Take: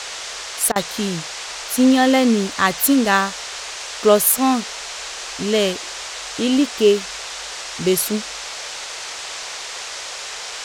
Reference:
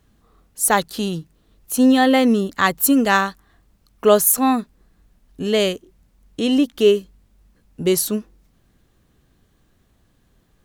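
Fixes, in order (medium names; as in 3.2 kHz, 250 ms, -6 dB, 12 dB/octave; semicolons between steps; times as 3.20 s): interpolate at 0.72 s, 37 ms; noise print and reduce 29 dB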